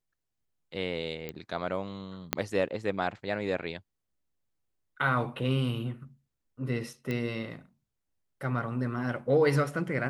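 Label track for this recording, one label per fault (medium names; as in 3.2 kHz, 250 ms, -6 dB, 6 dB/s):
1.290000	1.290000	pop -22 dBFS
2.330000	2.330000	pop -9 dBFS
7.110000	7.110000	pop -20 dBFS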